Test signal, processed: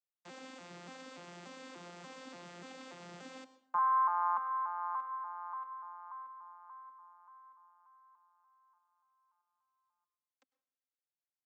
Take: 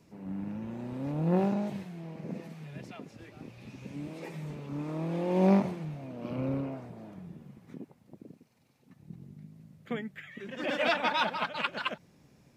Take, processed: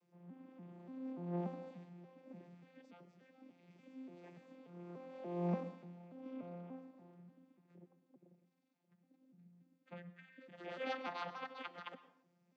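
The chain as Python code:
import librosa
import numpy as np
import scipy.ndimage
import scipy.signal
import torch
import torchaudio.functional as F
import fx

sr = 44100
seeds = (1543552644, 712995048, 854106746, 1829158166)

y = fx.vocoder_arp(x, sr, chord='bare fifth', root=53, every_ms=291)
y = fx.highpass(y, sr, hz=690.0, slope=6)
y = fx.rev_plate(y, sr, seeds[0], rt60_s=0.64, hf_ratio=0.7, predelay_ms=90, drr_db=14.5)
y = y * librosa.db_to_amplitude(-4.5)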